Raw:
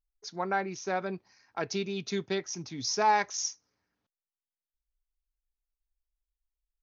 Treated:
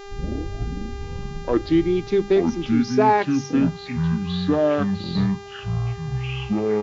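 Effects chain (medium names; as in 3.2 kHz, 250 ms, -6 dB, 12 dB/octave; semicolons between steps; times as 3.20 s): tape start-up on the opening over 2.10 s; peaking EQ 340 Hz +12.5 dB 1.3 oct; hum notches 50/100/150/200 Hz; ever faster or slower copies 273 ms, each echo -6 st, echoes 3; distance through air 200 m; mains buzz 400 Hz, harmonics 18, -44 dBFS -6 dB/octave; resampled via 16 kHz; trim +4.5 dB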